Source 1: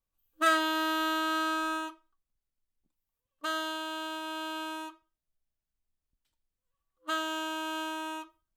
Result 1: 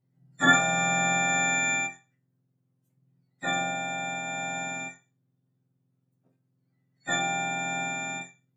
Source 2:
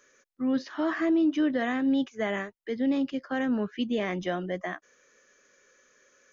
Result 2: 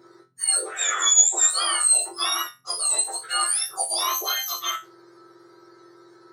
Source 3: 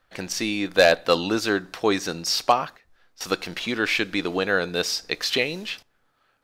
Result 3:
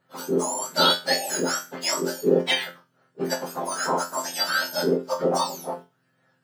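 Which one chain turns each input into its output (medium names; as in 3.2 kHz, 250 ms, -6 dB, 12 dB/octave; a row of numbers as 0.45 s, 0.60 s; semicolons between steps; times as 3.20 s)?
spectrum inverted on a logarithmic axis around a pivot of 1.5 kHz; chord resonator F2 fifth, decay 0.25 s; endings held to a fixed fall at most 220 dB/s; peak normalisation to -6 dBFS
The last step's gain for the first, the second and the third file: +17.0 dB, +20.0 dB, +11.5 dB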